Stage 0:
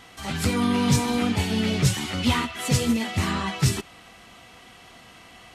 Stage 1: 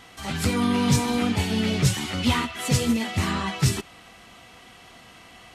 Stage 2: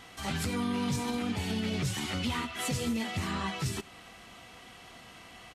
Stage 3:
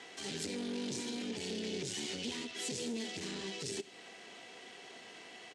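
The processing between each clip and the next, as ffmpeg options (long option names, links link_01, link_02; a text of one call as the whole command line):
ffmpeg -i in.wav -af anull out.wav
ffmpeg -i in.wav -filter_complex "[0:a]alimiter=limit=-21dB:level=0:latency=1:release=172,asplit=2[link_01][link_02];[link_02]adelay=87.46,volume=-22dB,highshelf=frequency=4000:gain=-1.97[link_03];[link_01][link_03]amix=inputs=2:normalize=0,volume=-2.5dB" out.wav
ffmpeg -i in.wav -filter_complex "[0:a]aeval=exprs='(tanh(56.2*val(0)+0.75)-tanh(0.75))/56.2':channel_layout=same,highpass=300,equalizer=frequency=410:width_type=q:width=4:gain=9,equalizer=frequency=1200:width_type=q:width=4:gain=-8,equalizer=frequency=1800:width_type=q:width=4:gain=3,lowpass=frequency=8400:width=0.5412,lowpass=frequency=8400:width=1.3066,acrossover=split=400|3000[link_01][link_02][link_03];[link_02]acompressor=threshold=-57dB:ratio=6[link_04];[link_01][link_04][link_03]amix=inputs=3:normalize=0,volume=5dB" out.wav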